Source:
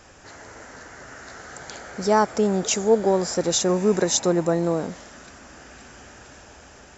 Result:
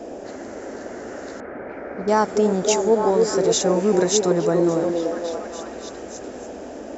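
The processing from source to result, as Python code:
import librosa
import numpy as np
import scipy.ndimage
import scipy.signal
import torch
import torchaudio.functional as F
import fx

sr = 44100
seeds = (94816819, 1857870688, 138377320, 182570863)

y = fx.ellip_lowpass(x, sr, hz=2400.0, order=4, stop_db=40, at=(1.4, 2.08))
y = fx.echo_stepped(y, sr, ms=286, hz=350.0, octaves=0.7, feedback_pct=70, wet_db=0.0)
y = fx.dmg_noise_band(y, sr, seeds[0], low_hz=220.0, high_hz=680.0, level_db=-35.0)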